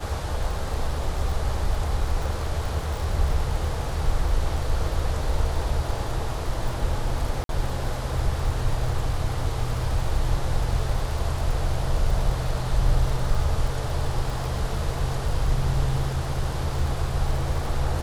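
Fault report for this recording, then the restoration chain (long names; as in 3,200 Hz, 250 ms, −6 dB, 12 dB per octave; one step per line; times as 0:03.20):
surface crackle 51 per second −30 dBFS
0:07.44–0:07.49: drop-out 52 ms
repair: click removal
repair the gap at 0:07.44, 52 ms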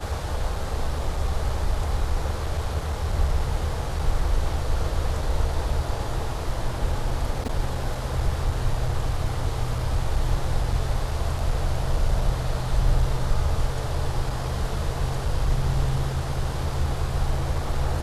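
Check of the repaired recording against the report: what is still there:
none of them is left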